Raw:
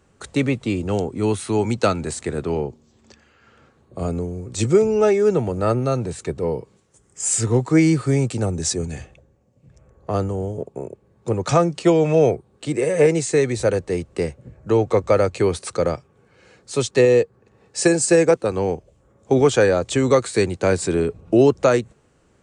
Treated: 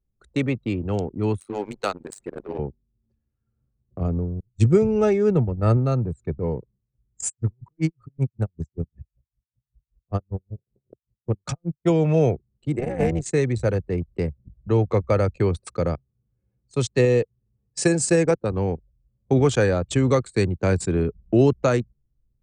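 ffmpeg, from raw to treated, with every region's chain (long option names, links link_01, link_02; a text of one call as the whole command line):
ffmpeg -i in.wav -filter_complex "[0:a]asettb=1/sr,asplit=3[link_01][link_02][link_03];[link_01]atrim=end=1.404[link_04];[link_02]atrim=start=1.4:end=2.59,asetpts=PTS-STARTPTS,afade=type=in:duration=0.004:curve=qsin,afade=type=out:start_time=1.186:duration=0.004:curve=qsin,aeval=exprs='val(0)+0.5*0.0335*sgn(val(0))':channel_layout=same,highpass=310,tremolo=f=100:d=0.788[link_05];[link_03]atrim=start=2.586[link_06];[link_04][link_05]acrossfade=duration=0.004:curve1=hsin:curve2=qsin[link_07];[link_07][link_06]acrossfade=duration=0.004:curve1=qsin:curve2=hsin,asettb=1/sr,asplit=3[link_08][link_09][link_10];[link_08]atrim=end=4.404[link_11];[link_09]atrim=start=4.4:end=5.77,asetpts=PTS-STARTPTS,afade=type=in:duration=0.004:curve=qsin,afade=type=out:start_time=1.366:duration=0.004:curve=qsin,agate=range=-33dB:threshold=-20dB:ratio=3:release=100:detection=peak,lowshelf=frequency=230:gain=5[link_12];[link_10]atrim=start=5.766[link_13];[link_11][link_12]acrossfade=duration=0.004:curve1=hsin:curve2=qsin[link_14];[link_14][link_13]acrossfade=duration=0.004:curve1=qsin:curve2=hsin,asettb=1/sr,asplit=3[link_15][link_16][link_17];[link_15]atrim=end=7.274[link_18];[link_16]atrim=start=7.27:end=11.9,asetpts=PTS-STARTPTS,afade=type=in:duration=0.004:curve=qsin,afade=type=out:start_time=4.626:duration=0.004:curve=qsin,adynamicequalizer=threshold=0.0251:dfrequency=290:dqfactor=1.9:tfrequency=290:tqfactor=1.9:attack=5:release=100:ratio=0.375:range=2:mode=cutabove:tftype=bell,aeval=exprs='val(0)*pow(10,-38*(0.5-0.5*cos(2*PI*5.2*n/s))/20)':channel_layout=same[link_19];[link_17]atrim=start=11.896[link_20];[link_18][link_19]acrossfade=duration=0.004:curve1=hsin:curve2=qsin[link_21];[link_21][link_20]acrossfade=duration=0.004:curve1=qsin:curve2=hsin,asettb=1/sr,asplit=3[link_22][link_23][link_24];[link_22]atrim=end=12.794[link_25];[link_23]atrim=start=12.79:end=13.26,asetpts=PTS-STARTPTS,afade=type=in:duration=0.004:curve=qsin,afade=type=out:start_time=0.466:duration=0.004:curve=qsin,tremolo=f=250:d=0.788,acrusher=bits=8:mode=log:mix=0:aa=0.000001[link_26];[link_24]atrim=start=13.256[link_27];[link_25][link_26]acrossfade=duration=0.004:curve1=hsin:curve2=qsin[link_28];[link_28][link_27]acrossfade=duration=0.004:curve1=qsin:curve2=hsin,anlmdn=158,asubboost=boost=2:cutoff=250,volume=-3.5dB" out.wav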